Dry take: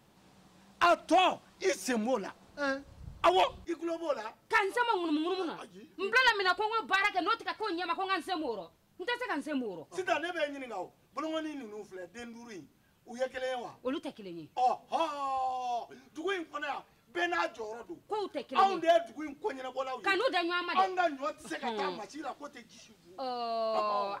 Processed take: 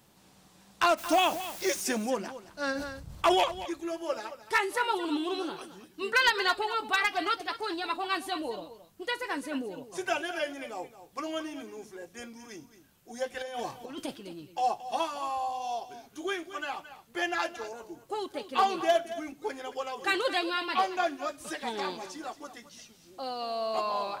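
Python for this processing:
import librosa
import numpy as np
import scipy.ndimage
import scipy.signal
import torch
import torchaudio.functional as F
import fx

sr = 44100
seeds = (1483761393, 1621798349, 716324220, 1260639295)

y = fx.high_shelf(x, sr, hz=4900.0, db=9.5)
y = fx.dmg_noise_colour(y, sr, seeds[0], colour='white', level_db=-44.0, at=(0.97, 1.8), fade=0.02)
y = fx.over_compress(y, sr, threshold_db=-38.0, ratio=-0.5, at=(13.39, 14.16), fade=0.02)
y = y + 10.0 ** (-13.5 / 20.0) * np.pad(y, (int(222 * sr / 1000.0), 0))[:len(y)]
y = fx.sustainer(y, sr, db_per_s=50.0, at=(2.74, 3.39), fade=0.02)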